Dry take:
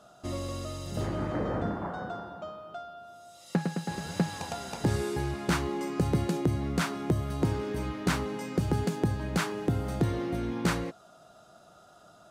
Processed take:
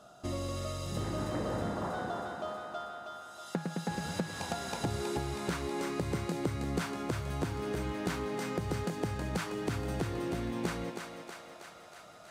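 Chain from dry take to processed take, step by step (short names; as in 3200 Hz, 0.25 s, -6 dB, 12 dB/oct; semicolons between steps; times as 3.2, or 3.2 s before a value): compressor, threshold -31 dBFS, peak gain reduction 10 dB; thinning echo 0.32 s, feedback 71%, high-pass 420 Hz, level -4.5 dB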